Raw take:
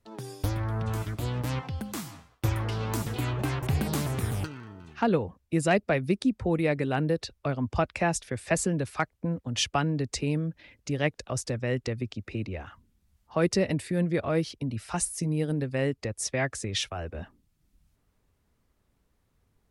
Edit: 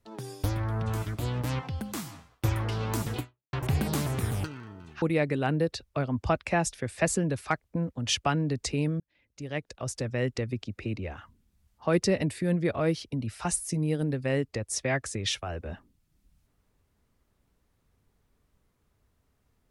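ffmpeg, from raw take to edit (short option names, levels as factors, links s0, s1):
-filter_complex "[0:a]asplit=4[s0][s1][s2][s3];[s0]atrim=end=3.53,asetpts=PTS-STARTPTS,afade=t=out:st=3.19:d=0.34:c=exp[s4];[s1]atrim=start=3.53:end=5.022,asetpts=PTS-STARTPTS,afade=t=in:d=0.004:c=hsin[s5];[s2]atrim=start=6.508:end=10.49,asetpts=PTS-STARTPTS,afade=t=out:st=3.978:d=0.004:c=hsin[s6];[s3]atrim=start=10.49,asetpts=PTS-STARTPTS,afade=t=in:d=1.18[s7];[s4][s5]concat=n=2:v=0:a=1[s8];[s6][s7]concat=n=2:v=0:a=1[s9];[s8][s9]acrossfade=d=0.004:c1=hsin:c2=hsin"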